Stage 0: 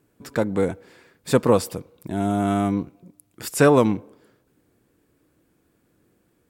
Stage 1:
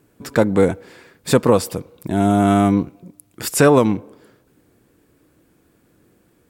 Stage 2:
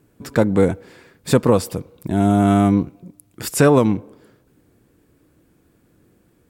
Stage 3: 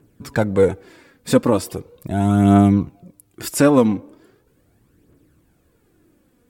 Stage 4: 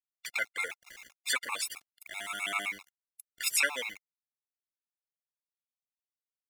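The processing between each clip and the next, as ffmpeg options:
ffmpeg -i in.wav -af "alimiter=limit=-9.5dB:level=0:latency=1:release=413,volume=7dB" out.wav
ffmpeg -i in.wav -af "lowshelf=frequency=240:gain=5.5,volume=-2.5dB" out.wav
ffmpeg -i in.wav -af "aphaser=in_gain=1:out_gain=1:delay=4.2:decay=0.48:speed=0.39:type=triangular,volume=-2dB" out.wav
ffmpeg -i in.wav -af "highpass=frequency=2200:width_type=q:width=3.5,aeval=exprs='val(0)*gte(abs(val(0)),0.00708)':channel_layout=same,afftfilt=real='re*gt(sin(2*PI*7.7*pts/sr)*(1-2*mod(floor(b*sr/1024/700),2)),0)':imag='im*gt(sin(2*PI*7.7*pts/sr)*(1-2*mod(floor(b*sr/1024/700),2)),0)':win_size=1024:overlap=0.75" out.wav

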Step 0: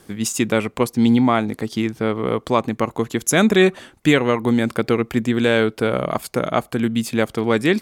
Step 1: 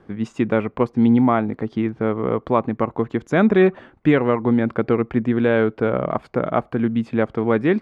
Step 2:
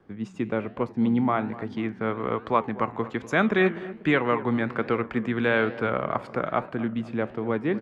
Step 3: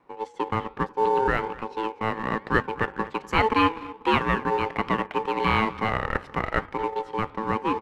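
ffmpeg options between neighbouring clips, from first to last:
ffmpeg -i in.wav -af "lowpass=1600" out.wav
ffmpeg -i in.wav -filter_complex "[0:a]acrossover=split=160|920[link_01][link_02][link_03];[link_03]dynaudnorm=framelen=240:gausssize=13:maxgain=11.5dB[link_04];[link_01][link_02][link_04]amix=inputs=3:normalize=0,flanger=delay=9:depth=9.2:regen=86:speed=1.2:shape=triangular,asplit=2[link_05][link_06];[link_06]adelay=245,lowpass=frequency=1000:poles=1,volume=-15dB,asplit=2[link_07][link_08];[link_08]adelay=245,lowpass=frequency=1000:poles=1,volume=0.55,asplit=2[link_09][link_10];[link_10]adelay=245,lowpass=frequency=1000:poles=1,volume=0.55,asplit=2[link_11][link_12];[link_12]adelay=245,lowpass=frequency=1000:poles=1,volume=0.55,asplit=2[link_13][link_14];[link_14]adelay=245,lowpass=frequency=1000:poles=1,volume=0.55[link_15];[link_05][link_07][link_09][link_11][link_13][link_15]amix=inputs=6:normalize=0,volume=-3.5dB" out.wav
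ffmpeg -i in.wav -filter_complex "[0:a]aeval=exprs='val(0)*sin(2*PI*660*n/s)':channel_layout=same,asplit=2[link_01][link_02];[link_02]aeval=exprs='sgn(val(0))*max(abs(val(0))-0.0133,0)':channel_layout=same,volume=-5.5dB[link_03];[link_01][link_03]amix=inputs=2:normalize=0" out.wav

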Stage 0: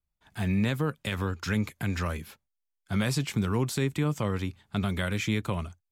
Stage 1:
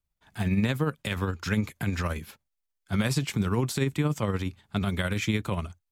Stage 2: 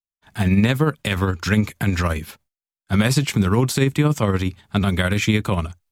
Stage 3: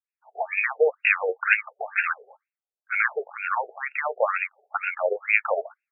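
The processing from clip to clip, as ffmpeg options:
ffmpeg -i in.wav -af "tremolo=f=17:d=0.43,volume=3dB" out.wav
ffmpeg -i in.wav -af "agate=range=-33dB:threshold=-58dB:ratio=3:detection=peak,volume=8.5dB" out.wav
ffmpeg -i in.wav -af "bandreject=frequency=990:width=8.3,aexciter=amount=1.6:drive=8.8:freq=2500,afftfilt=real='re*between(b*sr/1024,540*pow(2000/540,0.5+0.5*sin(2*PI*2.1*pts/sr))/1.41,540*pow(2000/540,0.5+0.5*sin(2*PI*2.1*pts/sr))*1.41)':imag='im*between(b*sr/1024,540*pow(2000/540,0.5+0.5*sin(2*PI*2.1*pts/sr))/1.41,540*pow(2000/540,0.5+0.5*sin(2*PI*2.1*pts/sr))*1.41)':win_size=1024:overlap=0.75,volume=5.5dB" out.wav

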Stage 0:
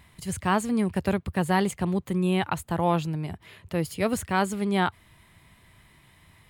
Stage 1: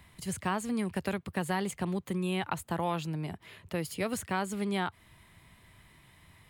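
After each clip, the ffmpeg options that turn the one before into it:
ffmpeg -i in.wav -filter_complex "[0:a]acrossover=split=130|1200[link_01][link_02][link_03];[link_01]acompressor=threshold=-51dB:ratio=4[link_04];[link_02]acompressor=threshold=-28dB:ratio=4[link_05];[link_03]acompressor=threshold=-33dB:ratio=4[link_06];[link_04][link_05][link_06]amix=inputs=3:normalize=0,volume=-2dB" out.wav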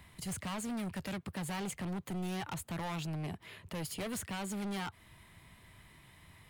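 ffmpeg -i in.wav -af "volume=35.5dB,asoftclip=hard,volume=-35.5dB" out.wav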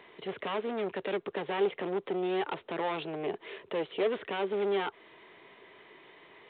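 ffmpeg -i in.wav -af "highpass=frequency=410:width_type=q:width=4.9,volume=5dB" -ar 8000 -c:a pcm_mulaw out.wav

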